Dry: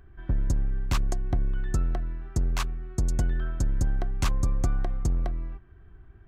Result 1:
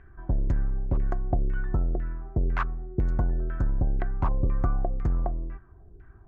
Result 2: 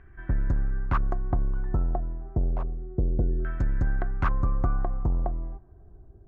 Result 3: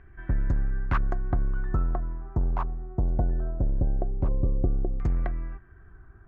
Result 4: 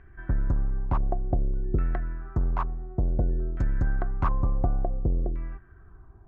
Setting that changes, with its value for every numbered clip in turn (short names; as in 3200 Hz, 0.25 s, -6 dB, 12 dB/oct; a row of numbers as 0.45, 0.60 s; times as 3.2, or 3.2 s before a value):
LFO low-pass, rate: 2, 0.29, 0.2, 0.56 Hz